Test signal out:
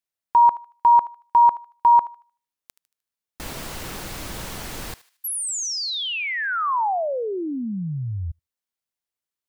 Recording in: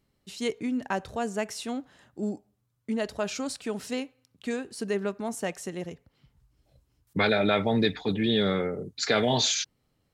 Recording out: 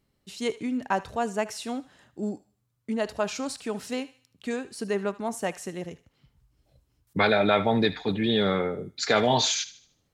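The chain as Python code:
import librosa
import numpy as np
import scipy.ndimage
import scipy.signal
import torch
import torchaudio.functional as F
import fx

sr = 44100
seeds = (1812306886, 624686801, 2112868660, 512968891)

y = fx.dynamic_eq(x, sr, hz=930.0, q=1.2, threshold_db=-38.0, ratio=4.0, max_db=6)
y = fx.echo_thinned(y, sr, ms=76, feedback_pct=41, hz=1100.0, wet_db=-15.5)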